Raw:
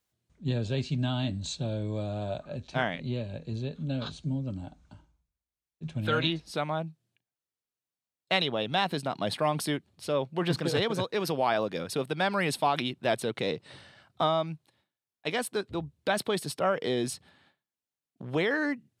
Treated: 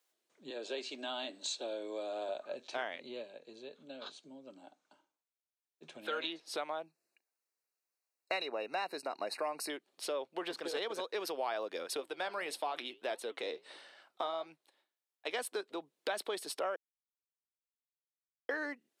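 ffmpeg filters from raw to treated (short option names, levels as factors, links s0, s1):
-filter_complex "[0:a]asettb=1/sr,asplit=3[s0][s1][s2];[s0]atrim=end=0.504[s3];[s1]atrim=start=0.5:end=2.29,asetpts=PTS-STARTPTS,afade=t=in:d=0.004:c=qsin,afade=t=out:st=1.786:d=0.004:c=qsin,highpass=f=260:w=0.5412,highpass=f=260:w=1.3066[s4];[s2]atrim=start=2.286[s5];[s3][s4]acrossfade=d=0.004:c1=hsin:c2=qsin[s6];[s6][s5]acrossfade=d=0.004:c1=qsin:c2=hsin,asettb=1/sr,asplit=3[s7][s8][s9];[s7]atrim=end=6.864[s10];[s8]atrim=start=6.86:end=9.7,asetpts=PTS-STARTPTS,afade=t=in:d=0.004:c=qsin,afade=t=out:st=2.836:d=0.004:c=qsin,asuperstop=centerf=3300:order=20:qfactor=3.4[s11];[s9]atrim=start=9.696[s12];[s10][s11]acrossfade=d=0.004:c1=hsin:c2=qsin[s13];[s13][s12]acrossfade=d=0.004:c1=qsin:c2=hsin,asettb=1/sr,asplit=3[s14][s15][s16];[s14]atrim=end=12.004[s17];[s15]atrim=start=12:end=15.34,asetpts=PTS-STARTPTS,afade=t=in:d=0.004:c=qsin,afade=t=out:st=3.336:d=0.004:c=qsin,flanger=delay=3.5:depth=5.9:regen=-76:speed=1.6:shape=triangular[s18];[s16]atrim=start=15.336[s19];[s17][s18]acrossfade=d=0.004:c1=hsin:c2=qsin[s20];[s20][s19]acrossfade=d=0.004:c1=qsin:c2=hsin,asplit=5[s21][s22][s23][s24][s25];[s21]atrim=end=3.34,asetpts=PTS-STARTPTS,afade=t=out:st=3.21:d=0.13:silence=0.375837[s26];[s22]atrim=start=3.34:end=5.73,asetpts=PTS-STARTPTS,volume=0.376[s27];[s23]atrim=start=5.73:end=16.76,asetpts=PTS-STARTPTS,afade=t=in:d=0.13:silence=0.375837,afade=t=out:st=11.026:d=0.004:c=hsin[s28];[s24]atrim=start=16.76:end=18.49,asetpts=PTS-STARTPTS,volume=0[s29];[s25]atrim=start=18.49,asetpts=PTS-STARTPTS,afade=t=in:d=0.004:c=hsin[s30];[s26][s27][s28][s29][s30]concat=n=5:v=0:a=1,acompressor=threshold=0.0126:ratio=3,highpass=f=350:w=0.5412,highpass=f=350:w=1.3066,volume=1.26"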